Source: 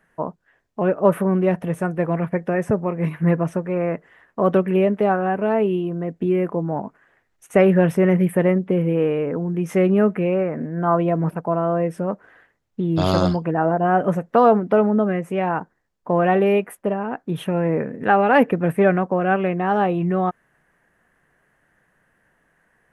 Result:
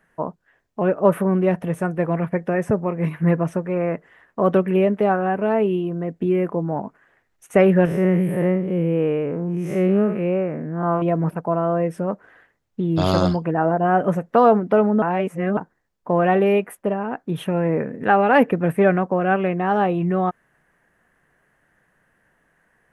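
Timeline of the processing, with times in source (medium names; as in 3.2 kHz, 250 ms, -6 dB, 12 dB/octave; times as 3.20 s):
7.85–11.02 s: spectral blur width 137 ms
15.02–15.57 s: reverse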